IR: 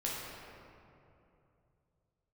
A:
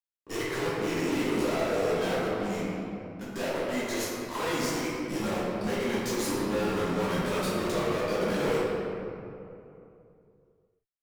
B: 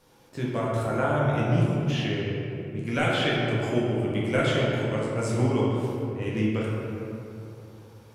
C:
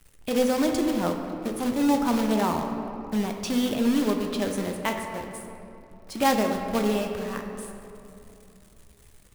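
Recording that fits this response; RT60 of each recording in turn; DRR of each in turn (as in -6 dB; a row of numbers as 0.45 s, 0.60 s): B; 2.8 s, 2.8 s, 2.8 s; -10.0 dB, -6.0 dB, 3.0 dB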